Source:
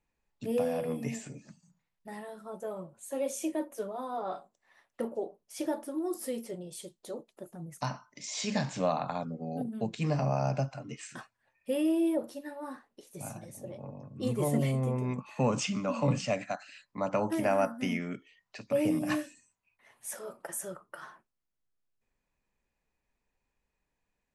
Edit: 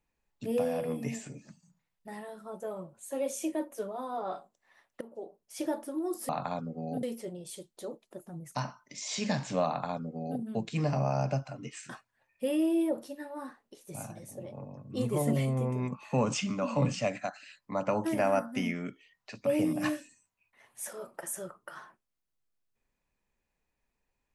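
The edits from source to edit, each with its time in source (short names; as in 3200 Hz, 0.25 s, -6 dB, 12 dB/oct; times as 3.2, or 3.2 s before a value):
5.01–5.57 fade in, from -17.5 dB
8.93–9.67 copy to 6.29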